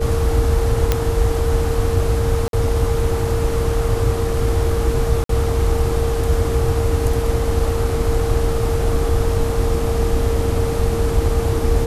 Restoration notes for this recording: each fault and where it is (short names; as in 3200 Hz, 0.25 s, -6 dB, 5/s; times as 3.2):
tone 460 Hz -22 dBFS
0.92 pop -2 dBFS
2.48–2.53 gap 52 ms
5.24–5.29 gap 53 ms
8.79 gap 2.3 ms